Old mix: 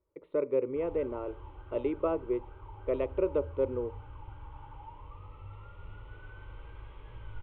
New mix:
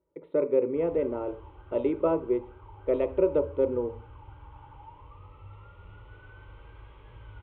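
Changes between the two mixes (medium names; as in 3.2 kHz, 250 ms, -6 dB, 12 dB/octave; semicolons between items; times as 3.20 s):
speech: send +11.0 dB; master: add high-pass 44 Hz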